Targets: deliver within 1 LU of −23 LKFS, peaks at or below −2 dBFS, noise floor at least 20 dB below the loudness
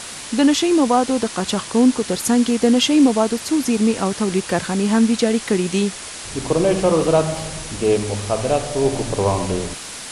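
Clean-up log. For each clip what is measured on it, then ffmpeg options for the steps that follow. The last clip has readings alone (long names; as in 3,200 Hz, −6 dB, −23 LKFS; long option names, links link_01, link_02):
background noise floor −33 dBFS; target noise floor −39 dBFS; integrated loudness −18.5 LKFS; sample peak −4.0 dBFS; target loudness −23.0 LKFS
→ -af "afftdn=noise_reduction=6:noise_floor=-33"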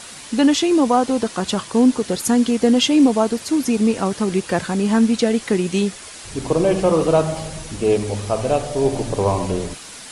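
background noise floor −37 dBFS; target noise floor −39 dBFS
→ -af "afftdn=noise_reduction=6:noise_floor=-37"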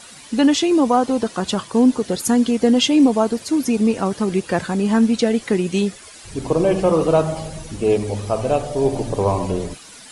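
background noise floor −41 dBFS; integrated loudness −18.5 LKFS; sample peak −4.5 dBFS; target loudness −23.0 LKFS
→ -af "volume=-4.5dB"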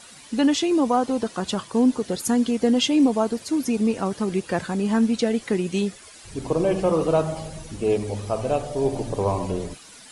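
integrated loudness −23.0 LKFS; sample peak −9.0 dBFS; background noise floor −46 dBFS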